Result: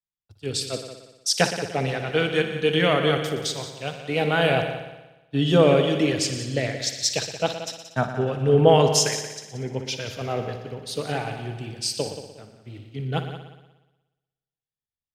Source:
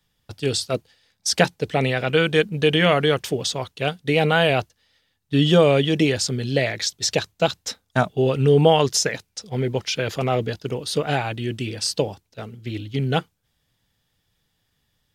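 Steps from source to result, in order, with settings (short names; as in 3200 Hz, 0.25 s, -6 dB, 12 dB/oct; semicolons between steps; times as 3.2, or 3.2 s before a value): multi-head echo 60 ms, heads all three, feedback 62%, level -12 dB; three-band expander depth 70%; gain -5 dB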